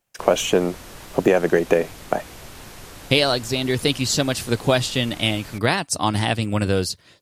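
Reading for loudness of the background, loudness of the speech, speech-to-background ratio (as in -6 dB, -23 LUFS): -40.0 LUFS, -21.5 LUFS, 18.5 dB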